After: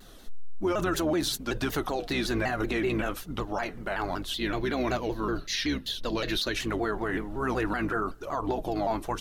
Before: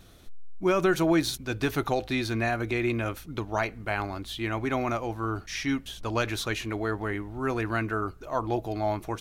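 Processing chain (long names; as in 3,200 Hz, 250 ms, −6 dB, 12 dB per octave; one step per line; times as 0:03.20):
sub-octave generator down 2 octaves, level −1 dB
parametric band 68 Hz −12 dB 1.9 octaves
notch filter 2,300 Hz, Q 6.8
flanger 1.2 Hz, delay 0.6 ms, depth 6.3 ms, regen −35%
0:04.37–0:06.55: thirty-one-band graphic EQ 800 Hz −9 dB, 1,250 Hz −8 dB, 4,000 Hz +10 dB, 8,000 Hz −11 dB
brickwall limiter −27.5 dBFS, peak gain reduction 10.5 dB
pitch modulation by a square or saw wave saw down 5.3 Hz, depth 160 cents
level +8 dB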